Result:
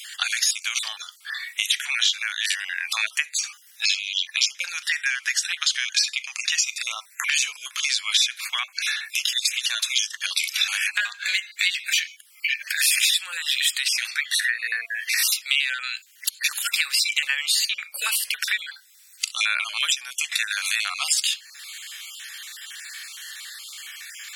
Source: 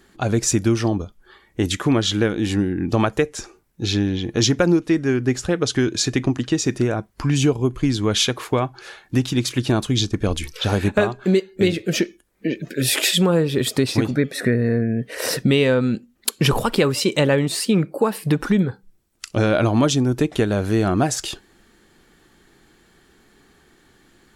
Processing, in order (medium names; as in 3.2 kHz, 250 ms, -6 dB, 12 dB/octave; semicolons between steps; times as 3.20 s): random holes in the spectrogram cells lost 30%; inverse Chebyshev high-pass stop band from 330 Hz, stop band 80 dB; harmonic-percussive split percussive -8 dB; compression 4:1, threshold -52 dBFS, peak gain reduction 23.5 dB; loudness maximiser +33 dB; trim -4 dB